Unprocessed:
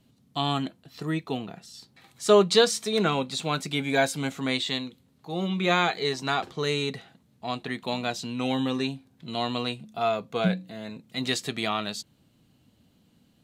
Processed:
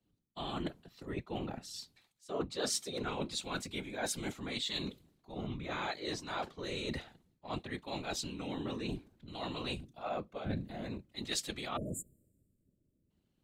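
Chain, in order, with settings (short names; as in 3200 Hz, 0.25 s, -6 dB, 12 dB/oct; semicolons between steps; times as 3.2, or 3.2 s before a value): whisperiser; spectral delete 11.77–13.1, 650–6900 Hz; reverse; compressor 8:1, threshold -37 dBFS, peak gain reduction 23.5 dB; reverse; three-band expander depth 70%; gain +1 dB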